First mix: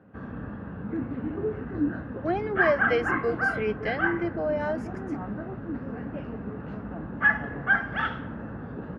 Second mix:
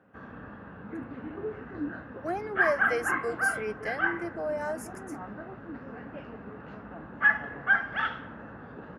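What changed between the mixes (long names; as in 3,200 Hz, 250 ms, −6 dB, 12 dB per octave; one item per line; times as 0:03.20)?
speech: remove low-pass with resonance 3,400 Hz, resonance Q 3.5
master: add low-shelf EQ 420 Hz −11.5 dB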